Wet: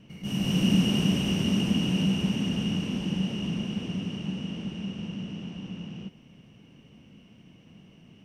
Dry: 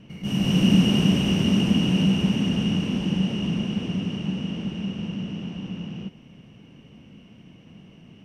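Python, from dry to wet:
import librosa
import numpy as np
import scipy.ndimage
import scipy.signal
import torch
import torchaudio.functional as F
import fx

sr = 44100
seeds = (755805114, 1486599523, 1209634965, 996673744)

y = fx.high_shelf(x, sr, hz=4800.0, db=5.5)
y = y * librosa.db_to_amplitude(-5.0)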